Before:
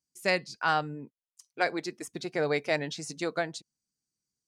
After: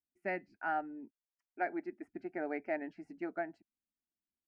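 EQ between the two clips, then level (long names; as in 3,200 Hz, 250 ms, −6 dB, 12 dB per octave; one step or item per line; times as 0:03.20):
high-frequency loss of the air 440 metres
high-shelf EQ 2,700 Hz −8 dB
phaser with its sweep stopped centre 730 Hz, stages 8
−3.0 dB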